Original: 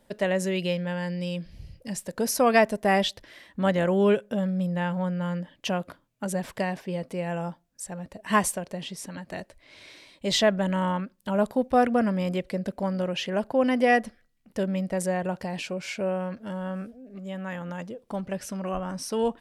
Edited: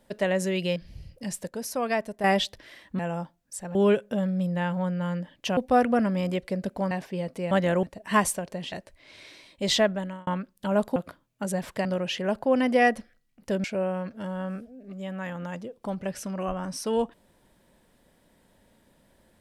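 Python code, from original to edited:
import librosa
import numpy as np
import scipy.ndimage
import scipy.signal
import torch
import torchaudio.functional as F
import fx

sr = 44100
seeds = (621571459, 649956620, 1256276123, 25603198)

y = fx.edit(x, sr, fx.cut(start_s=0.76, length_s=0.64),
    fx.clip_gain(start_s=2.13, length_s=0.75, db=-7.5),
    fx.swap(start_s=3.63, length_s=0.32, other_s=7.26, other_length_s=0.76),
    fx.swap(start_s=5.77, length_s=0.89, other_s=11.59, other_length_s=1.34),
    fx.cut(start_s=8.91, length_s=0.44),
    fx.fade_out_span(start_s=10.41, length_s=0.49),
    fx.cut(start_s=14.72, length_s=1.18), tone=tone)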